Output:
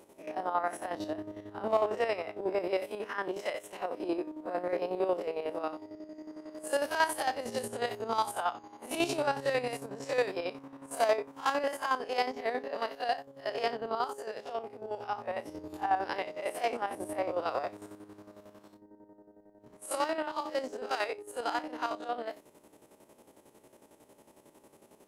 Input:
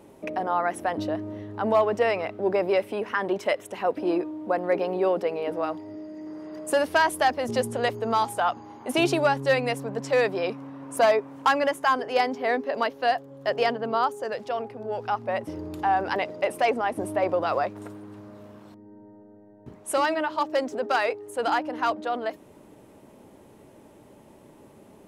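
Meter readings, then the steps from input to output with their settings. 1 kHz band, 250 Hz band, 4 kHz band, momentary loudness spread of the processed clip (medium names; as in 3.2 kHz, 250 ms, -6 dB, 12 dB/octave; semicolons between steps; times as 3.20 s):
-7.5 dB, -9.0 dB, -6.5 dB, 11 LU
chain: spectral blur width 90 ms; tone controls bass -9 dB, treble +6 dB; square tremolo 11 Hz, depth 60%, duty 45%; trim -2 dB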